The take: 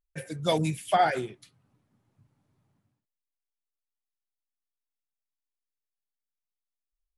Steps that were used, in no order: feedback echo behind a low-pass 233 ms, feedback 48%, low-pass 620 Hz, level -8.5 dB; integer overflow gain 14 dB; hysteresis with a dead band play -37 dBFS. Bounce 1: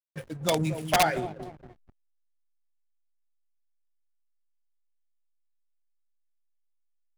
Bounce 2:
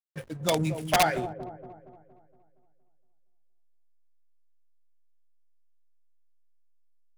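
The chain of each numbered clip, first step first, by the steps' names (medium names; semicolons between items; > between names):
integer overflow > feedback echo behind a low-pass > hysteresis with a dead band; integer overflow > hysteresis with a dead band > feedback echo behind a low-pass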